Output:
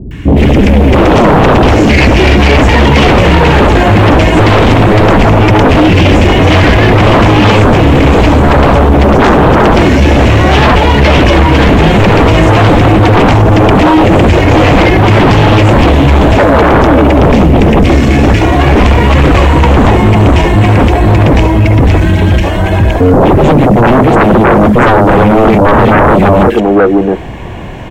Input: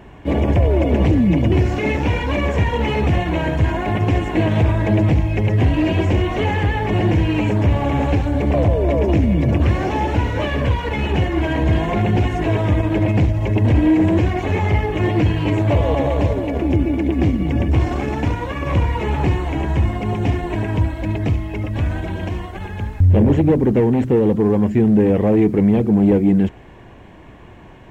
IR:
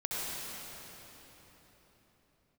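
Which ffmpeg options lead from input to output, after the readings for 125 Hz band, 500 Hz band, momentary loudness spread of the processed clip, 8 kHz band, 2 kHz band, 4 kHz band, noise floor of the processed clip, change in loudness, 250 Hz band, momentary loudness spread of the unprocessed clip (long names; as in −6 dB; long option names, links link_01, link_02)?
+10.5 dB, +13.5 dB, 2 LU, can't be measured, +16.5 dB, +18.0 dB, −10 dBFS, +12.0 dB, +10.5 dB, 7 LU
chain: -filter_complex "[0:a]acrossover=split=350|1400[link_01][link_02][link_03];[link_03]adelay=110[link_04];[link_02]adelay=680[link_05];[link_01][link_05][link_04]amix=inputs=3:normalize=0,aeval=exprs='0.631*sin(PI/2*5.01*val(0)/0.631)':channel_layout=same,volume=2.5dB"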